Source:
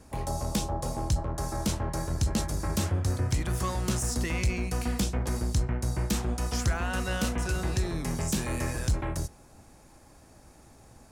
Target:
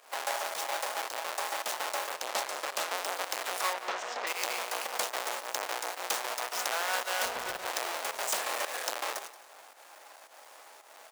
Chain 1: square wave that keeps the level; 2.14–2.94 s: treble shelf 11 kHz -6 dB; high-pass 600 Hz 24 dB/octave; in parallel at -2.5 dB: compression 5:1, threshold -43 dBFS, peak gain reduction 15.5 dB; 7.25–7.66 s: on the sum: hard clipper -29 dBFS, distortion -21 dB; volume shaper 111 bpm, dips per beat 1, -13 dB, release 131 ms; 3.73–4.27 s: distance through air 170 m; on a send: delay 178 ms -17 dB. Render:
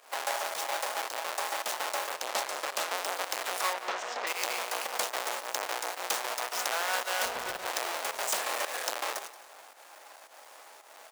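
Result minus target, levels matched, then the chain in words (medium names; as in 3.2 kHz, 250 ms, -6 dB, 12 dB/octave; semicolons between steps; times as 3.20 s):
compression: peak gain reduction -9 dB
square wave that keeps the level; 2.14–2.94 s: treble shelf 11 kHz -6 dB; high-pass 600 Hz 24 dB/octave; in parallel at -2.5 dB: compression 5:1, threshold -54 dBFS, peak gain reduction 24.5 dB; 7.25–7.66 s: on the sum: hard clipper -29 dBFS, distortion -22 dB; volume shaper 111 bpm, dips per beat 1, -13 dB, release 131 ms; 3.73–4.27 s: distance through air 170 m; on a send: delay 178 ms -17 dB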